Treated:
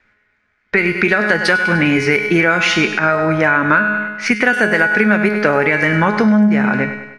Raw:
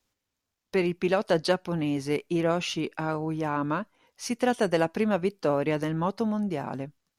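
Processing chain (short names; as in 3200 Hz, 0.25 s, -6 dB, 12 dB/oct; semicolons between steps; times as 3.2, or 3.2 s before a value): low-pass opened by the level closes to 2600 Hz, open at -20 dBFS; band shelf 1800 Hz +15 dB 1 oct; resonator 210 Hz, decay 0.61 s, harmonics all, mix 80%; on a send: feedback echo 0.1 s, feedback 52%, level -14.5 dB; on the sum: compressor, threshold -37 dBFS, peak gain reduction 11.5 dB; maximiser +28.5 dB; gain -1 dB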